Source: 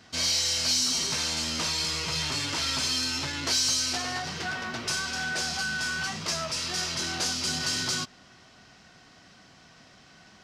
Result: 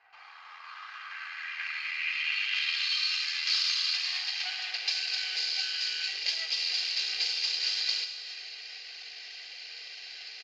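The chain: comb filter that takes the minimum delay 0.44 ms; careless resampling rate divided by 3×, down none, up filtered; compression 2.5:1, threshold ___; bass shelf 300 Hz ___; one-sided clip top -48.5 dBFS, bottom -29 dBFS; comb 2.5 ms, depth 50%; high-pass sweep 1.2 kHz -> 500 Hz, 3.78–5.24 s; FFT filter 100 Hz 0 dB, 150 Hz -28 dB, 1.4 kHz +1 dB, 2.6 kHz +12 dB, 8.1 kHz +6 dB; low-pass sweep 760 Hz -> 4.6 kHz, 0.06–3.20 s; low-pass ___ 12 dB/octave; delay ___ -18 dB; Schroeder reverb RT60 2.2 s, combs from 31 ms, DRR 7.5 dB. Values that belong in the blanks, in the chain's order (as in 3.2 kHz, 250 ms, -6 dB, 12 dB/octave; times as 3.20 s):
-46 dBFS, +12 dB, 7.8 kHz, 407 ms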